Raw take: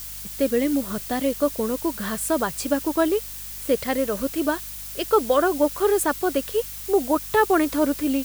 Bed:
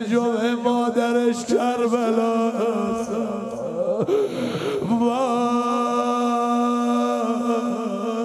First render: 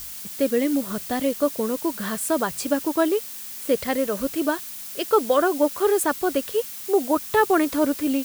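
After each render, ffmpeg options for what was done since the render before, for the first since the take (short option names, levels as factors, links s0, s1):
-af "bandreject=f=50:t=h:w=4,bandreject=f=100:t=h:w=4,bandreject=f=150:t=h:w=4"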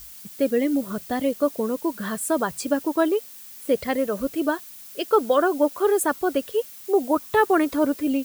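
-af "afftdn=nr=8:nf=-36"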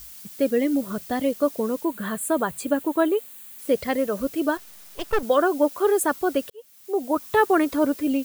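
-filter_complex "[0:a]asettb=1/sr,asplit=3[s0][s1][s2];[s0]atrim=end=1.844[s3];[s1]atrim=start=1.84:end=3.59,asetpts=PTS-STARTPTS,afade=t=in:d=0.004:c=qsin,afade=t=out:st=1.746:d=0.004:c=qsin,equalizer=f=5400:w=3.5:g=-14.5[s4];[s2]atrim=start=3.586[s5];[s3][s4]acrossfade=d=0.004:c1=hsin:c2=qsin[s6];[s6][s5]acrossfade=d=0.004:c1=qsin:c2=hsin,asettb=1/sr,asplit=3[s7][s8][s9];[s7]atrim=end=4.574[s10];[s8]atrim=start=4.57:end=5.23,asetpts=PTS-STARTPTS,afade=t=in:d=0.004:c=qsin,afade=t=out:st=0.656:d=0.004:c=qsin,aeval=exprs='max(val(0),0)':c=same[s11];[s9]atrim=start=5.226[s12];[s10][s11]acrossfade=d=0.004:c1=hsin:c2=qsin[s13];[s13][s12]acrossfade=d=0.004:c1=qsin:c2=hsin,asplit=2[s14][s15];[s14]atrim=end=6.5,asetpts=PTS-STARTPTS,afade=t=out:st=6.496:d=0.004:c=hsin[s16];[s15]atrim=start=6.5,asetpts=PTS-STARTPTS,afade=t=in:d=0.79[s17];[s16][s17]concat=n=2:v=0:a=1"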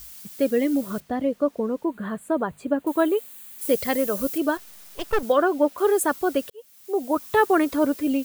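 -filter_complex "[0:a]asettb=1/sr,asplit=3[s0][s1][s2];[s0]atrim=end=1.004[s3];[s1]atrim=start=1:end=2.87,asetpts=PTS-STARTPTS,afade=t=in:d=0.004:c=qsin,afade=t=out:st=1.866:d=0.004:c=qsin,lowpass=f=1200:p=1[s4];[s2]atrim=start=2.866[s5];[s3][s4]acrossfade=d=0.004:c1=hsin:c2=qsin[s6];[s6][s5]acrossfade=d=0.004:c1=qsin:c2=hsin,asettb=1/sr,asplit=3[s7][s8][s9];[s7]atrim=end=3.614[s10];[s8]atrim=start=3.61:end=4.38,asetpts=PTS-STARTPTS,afade=t=in:d=0.004:c=qsin,afade=t=out:st=0.766:d=0.004:c=qsin,highshelf=f=5600:g=10[s11];[s9]atrim=start=4.376[s12];[s10][s11]acrossfade=d=0.004:c1=hsin:c2=qsin[s13];[s13][s12]acrossfade=d=0.004:c1=qsin:c2=hsin,asettb=1/sr,asplit=3[s14][s15][s16];[s14]atrim=end=5.324[s17];[s15]atrim=start=5.32:end=5.78,asetpts=PTS-STARTPTS,afade=t=in:d=0.004:c=qsin,afade=t=out:st=0.456:d=0.004:c=qsin,acrossover=split=4200[s18][s19];[s19]acompressor=threshold=0.00501:ratio=4:attack=1:release=60[s20];[s18][s20]amix=inputs=2:normalize=0[s21];[s16]atrim=start=5.776[s22];[s17][s21]acrossfade=d=0.004:c1=hsin:c2=qsin[s23];[s23][s22]acrossfade=d=0.004:c1=qsin:c2=hsin"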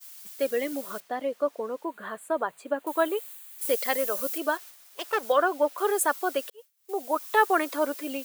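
-af "agate=range=0.0224:threshold=0.0126:ratio=3:detection=peak,highpass=570"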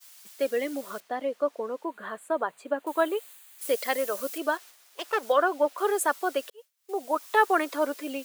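-af "highpass=170,highshelf=f=11000:g=-8.5"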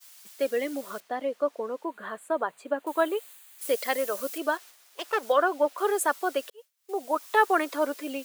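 -af anull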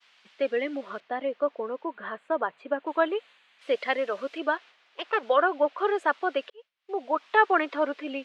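-af "lowpass=f=3000:w=0.5412,lowpass=f=3000:w=1.3066,aemphasis=mode=production:type=75kf"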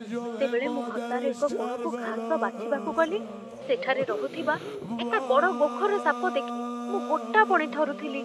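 -filter_complex "[1:a]volume=0.237[s0];[0:a][s0]amix=inputs=2:normalize=0"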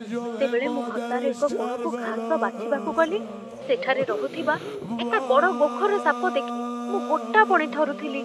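-af "volume=1.41"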